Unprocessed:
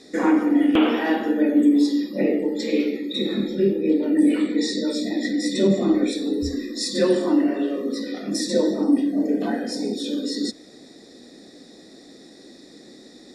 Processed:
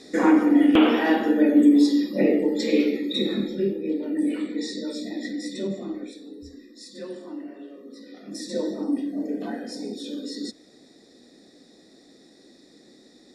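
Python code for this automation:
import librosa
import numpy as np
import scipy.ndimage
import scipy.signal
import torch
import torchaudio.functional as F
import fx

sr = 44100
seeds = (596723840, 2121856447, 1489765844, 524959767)

y = fx.gain(x, sr, db=fx.line((3.12, 1.0), (3.84, -7.0), (5.31, -7.0), (6.29, -17.5), (7.87, -17.5), (8.61, -7.0)))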